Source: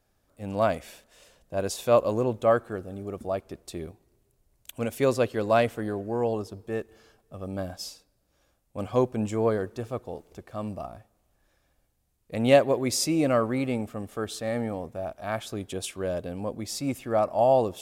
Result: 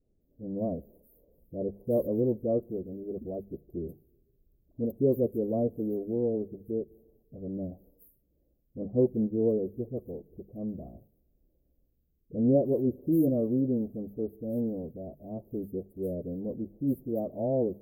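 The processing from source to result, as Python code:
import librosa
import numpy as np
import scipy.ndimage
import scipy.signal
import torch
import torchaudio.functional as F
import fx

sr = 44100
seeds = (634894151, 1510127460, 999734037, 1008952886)

y = fx.spec_delay(x, sr, highs='late', ms=209)
y = scipy.signal.sosfilt(scipy.signal.cheby2(4, 70, [1600.0, 6200.0], 'bandstop', fs=sr, output='sos'), y)
y = fx.hum_notches(y, sr, base_hz=50, count=4)
y = y * 10.0 ** (1.5 / 20.0)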